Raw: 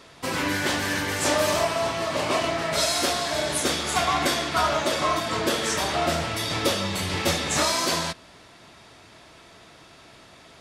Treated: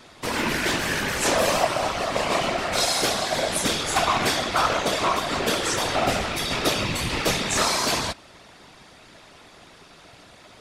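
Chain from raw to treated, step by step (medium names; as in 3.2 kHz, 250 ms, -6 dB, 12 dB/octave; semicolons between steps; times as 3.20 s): rattle on loud lows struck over -32 dBFS, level -22 dBFS; whisper effect; trim +1 dB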